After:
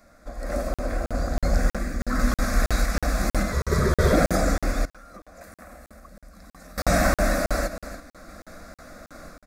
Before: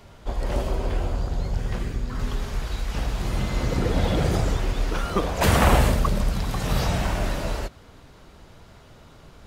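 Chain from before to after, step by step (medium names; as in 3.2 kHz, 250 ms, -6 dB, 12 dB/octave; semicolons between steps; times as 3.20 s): bass shelf 190 Hz -6.5 dB; level rider gain up to 14 dB; static phaser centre 610 Hz, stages 8; 3.52–4.13 s: frequency shift -110 Hz; delay 285 ms -14 dB; random-step tremolo; 4.85–6.78 s: compression 8:1, threshold -44 dBFS, peak gain reduction 27.5 dB; crackling interface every 0.32 s, samples 2048, zero, from 0.74 s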